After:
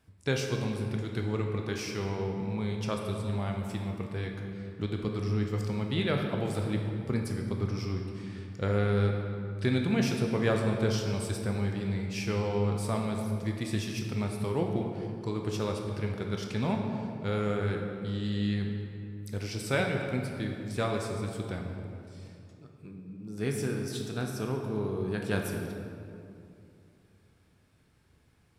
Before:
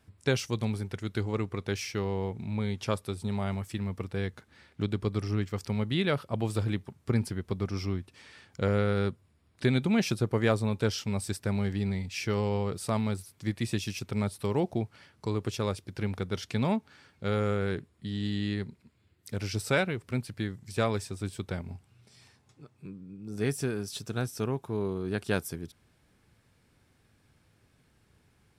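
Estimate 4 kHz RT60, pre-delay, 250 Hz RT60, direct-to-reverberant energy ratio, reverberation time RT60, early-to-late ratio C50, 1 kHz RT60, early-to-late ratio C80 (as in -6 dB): 1.5 s, 13 ms, 3.1 s, 1.5 dB, 2.6 s, 3.5 dB, 2.4 s, 4.5 dB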